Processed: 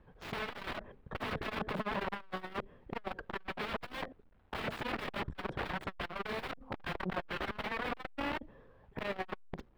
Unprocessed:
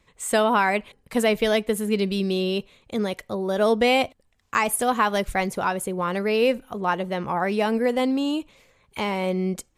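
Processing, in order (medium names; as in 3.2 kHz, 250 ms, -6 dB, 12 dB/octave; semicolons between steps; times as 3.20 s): local Wiener filter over 15 samples; treble shelf 7.2 kHz +10.5 dB; formant shift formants -4 st; in parallel at -7 dB: sine folder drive 11 dB, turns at -2.5 dBFS; on the sum: bit crusher 10-bit; integer overflow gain 17.5 dB; distance through air 440 m; transformer saturation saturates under 210 Hz; trim -7.5 dB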